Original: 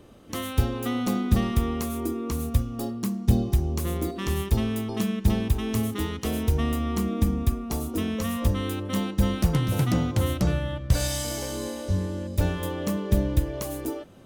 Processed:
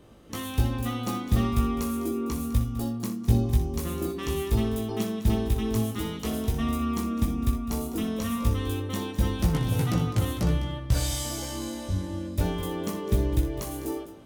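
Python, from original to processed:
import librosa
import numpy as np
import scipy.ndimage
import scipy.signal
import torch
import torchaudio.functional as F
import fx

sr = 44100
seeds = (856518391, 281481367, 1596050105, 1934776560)

y = fx.doubler(x, sr, ms=18.0, db=-3.5)
y = fx.echo_multitap(y, sr, ms=(61, 206), db=(-10.5, -14.0))
y = y * librosa.db_to_amplitude(-3.5)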